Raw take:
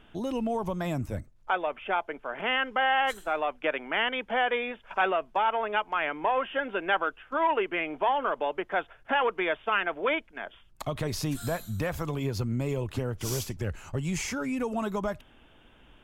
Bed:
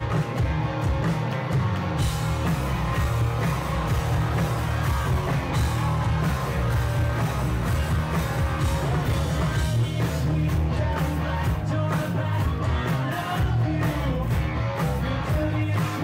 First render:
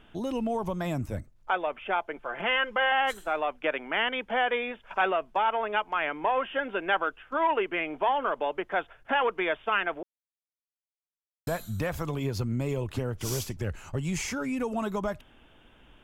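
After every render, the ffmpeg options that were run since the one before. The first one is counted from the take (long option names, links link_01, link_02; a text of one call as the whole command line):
ffmpeg -i in.wav -filter_complex "[0:a]asettb=1/sr,asplit=3[link_01][link_02][link_03];[link_01]atrim=end=2.164[link_04];[link_02]atrim=start=2.16:end=2.92,asetpts=PTS-STARTPTS,afade=type=in:duration=0.004:curve=qsin,afade=type=out:start_time=0.756:duration=0.004:curve=qsin,aecho=1:1:5.8:0.54,atrim=end_sample=33516[link_05];[link_03]atrim=start=2.916[link_06];[link_04][link_05]acrossfade=duration=0.004:curve1=hsin:curve2=qsin[link_07];[link_07][link_06]acrossfade=duration=0.004:curve1=qsin:curve2=hsin,asplit=3[link_08][link_09][link_10];[link_08]atrim=end=10.03,asetpts=PTS-STARTPTS,afade=type=out:start_time=10.026:duration=0.004:curve=hsin[link_11];[link_09]atrim=start=10.03:end=11.47,asetpts=PTS-STARTPTS,volume=0[link_12];[link_10]atrim=start=11.47,asetpts=PTS-STARTPTS,afade=type=in:duration=0.004:curve=hsin[link_13];[link_11][link_12][link_13]concat=n=3:v=0:a=1" out.wav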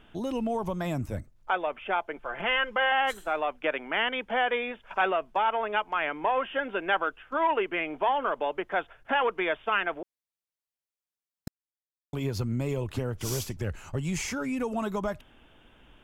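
ffmpeg -i in.wav -filter_complex "[0:a]asplit=3[link_01][link_02][link_03];[link_01]afade=type=out:start_time=2.22:duration=0.02[link_04];[link_02]asubboost=boost=2.5:cutoff=140,afade=type=in:start_time=2.22:duration=0.02,afade=type=out:start_time=2.67:duration=0.02[link_05];[link_03]afade=type=in:start_time=2.67:duration=0.02[link_06];[link_04][link_05][link_06]amix=inputs=3:normalize=0,asplit=3[link_07][link_08][link_09];[link_07]atrim=end=11.48,asetpts=PTS-STARTPTS,afade=type=out:start_time=11.476:duration=0.004:curve=hsin[link_10];[link_08]atrim=start=11.48:end=12.13,asetpts=PTS-STARTPTS,volume=0[link_11];[link_09]atrim=start=12.13,asetpts=PTS-STARTPTS,afade=type=in:duration=0.004:curve=hsin[link_12];[link_10][link_11][link_12]concat=n=3:v=0:a=1" out.wav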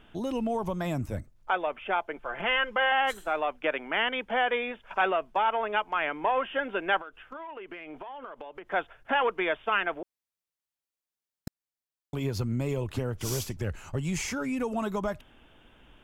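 ffmpeg -i in.wav -filter_complex "[0:a]asettb=1/sr,asplit=3[link_01][link_02][link_03];[link_01]atrim=end=7.004[link_04];[link_02]atrim=start=7:end=8.68,asetpts=PTS-STARTPTS,afade=type=in:duration=0.004:curve=qsin,afade=type=out:start_time=1.676:duration=0.004:curve=qsin,acompressor=threshold=-37dB:ratio=20:attack=3.2:release=140:knee=1:detection=peak[link_05];[link_03]atrim=start=8.676[link_06];[link_04][link_05]acrossfade=duration=0.004:curve1=hsin:curve2=qsin[link_07];[link_07][link_06]acrossfade=duration=0.004:curve1=qsin:curve2=hsin" out.wav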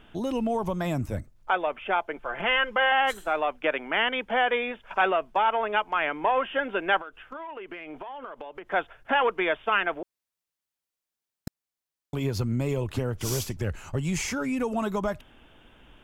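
ffmpeg -i in.wav -af "volume=2.5dB" out.wav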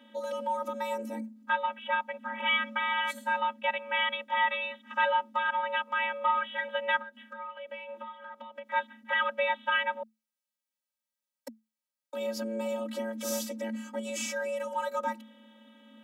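ffmpeg -i in.wav -af "afftfilt=real='hypot(re,im)*cos(PI*b)':imag='0':win_size=512:overlap=0.75,afreqshift=220" out.wav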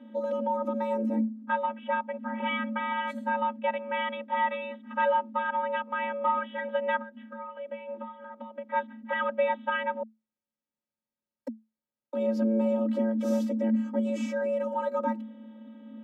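ffmpeg -i in.wav -af "lowpass=frequency=1200:poles=1,equalizer=frequency=200:width=0.41:gain=11.5" out.wav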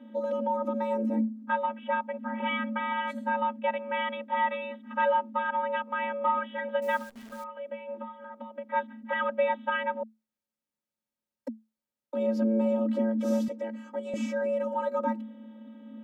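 ffmpeg -i in.wav -filter_complex "[0:a]asettb=1/sr,asplit=3[link_01][link_02][link_03];[link_01]atrim=end=6.824[link_04];[link_02]atrim=start=6.82:end=7.44,asetpts=PTS-STARTPTS,afade=type=in:duration=0.004:curve=qsin,afade=type=out:start_time=0.616:duration=0.004:curve=qsin,acrusher=bits=9:dc=4:mix=0:aa=0.000001[link_05];[link_03]atrim=start=7.436[link_06];[link_04][link_05]acrossfade=duration=0.004:curve1=hsin:curve2=qsin[link_07];[link_07][link_06]acrossfade=duration=0.004:curve1=qsin:curve2=hsin,asettb=1/sr,asplit=3[link_08][link_09][link_10];[link_08]atrim=end=13.484[link_11];[link_09]atrim=start=13.48:end=14.14,asetpts=PTS-STARTPTS,afade=type=in:duration=0.004:curve=qsin,afade=type=out:start_time=0.656:duration=0.004:curve=qsin,highpass=510[link_12];[link_10]atrim=start=14.136[link_13];[link_11][link_12]acrossfade=duration=0.004:curve1=hsin:curve2=qsin[link_14];[link_14][link_13]acrossfade=duration=0.004:curve1=qsin:curve2=hsin" out.wav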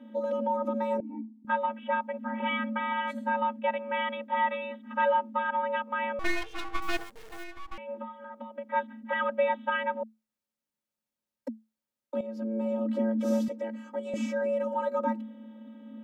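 ffmpeg -i in.wav -filter_complex "[0:a]asettb=1/sr,asplit=3[link_01][link_02][link_03];[link_01]atrim=end=1.004[link_04];[link_02]atrim=start=1:end=1.45,asetpts=PTS-STARTPTS,afade=type=in:duration=0.004:curve=qsin,afade=type=out:start_time=0.446:duration=0.004:curve=qsin,asplit=3[link_05][link_06][link_07];[link_05]bandpass=frequency=300:width_type=q:width=8,volume=0dB[link_08];[link_06]bandpass=frequency=870:width_type=q:width=8,volume=-6dB[link_09];[link_07]bandpass=frequency=2240:width_type=q:width=8,volume=-9dB[link_10];[link_08][link_09][link_10]amix=inputs=3:normalize=0[link_11];[link_03]atrim=start=1.446[link_12];[link_04][link_11]acrossfade=duration=0.004:curve1=hsin:curve2=qsin[link_13];[link_13][link_12]acrossfade=duration=0.004:curve1=qsin:curve2=hsin,asettb=1/sr,asplit=3[link_14][link_15][link_16];[link_14]atrim=end=6.194[link_17];[link_15]atrim=start=6.19:end=7.78,asetpts=PTS-STARTPTS,afade=type=in:duration=0.004:curve=qsin,afade=type=out:start_time=1.586:duration=0.004:curve=qsin,aeval=exprs='abs(val(0))':channel_layout=same[link_18];[link_16]atrim=start=7.776[link_19];[link_17][link_18]acrossfade=duration=0.004:curve1=hsin:curve2=qsin[link_20];[link_20][link_19]acrossfade=duration=0.004:curve1=qsin:curve2=hsin,asplit=2[link_21][link_22];[link_21]atrim=end=12.21,asetpts=PTS-STARTPTS,afade=type=out:start_time=12.206:duration=0.004:curve=hsin:silence=0.211349[link_23];[link_22]atrim=start=12.21,asetpts=PTS-STARTPTS,afade=type=in:duration=0.91:silence=0.211349[link_24];[link_23][link_24]concat=n=2:v=0:a=1" out.wav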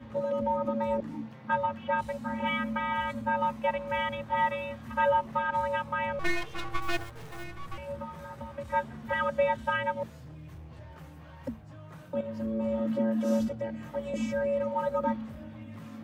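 ffmpeg -i in.wav -i bed.wav -filter_complex "[1:a]volume=-23dB[link_01];[0:a][link_01]amix=inputs=2:normalize=0" out.wav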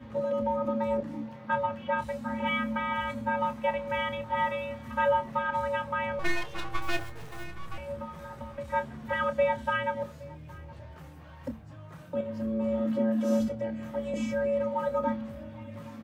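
ffmpeg -i in.wav -filter_complex "[0:a]asplit=2[link_01][link_02];[link_02]adelay=28,volume=-11dB[link_03];[link_01][link_03]amix=inputs=2:normalize=0,asplit=2[link_04][link_05];[link_05]adelay=816.3,volume=-21dB,highshelf=frequency=4000:gain=-18.4[link_06];[link_04][link_06]amix=inputs=2:normalize=0" out.wav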